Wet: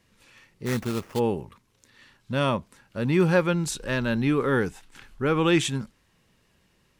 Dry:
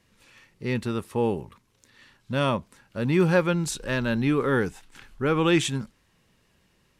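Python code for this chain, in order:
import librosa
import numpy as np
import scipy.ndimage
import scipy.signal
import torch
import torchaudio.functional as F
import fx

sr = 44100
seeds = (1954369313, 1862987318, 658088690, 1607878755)

y = fx.sample_hold(x, sr, seeds[0], rate_hz=3900.0, jitter_pct=20, at=(0.65, 1.18), fade=0.02)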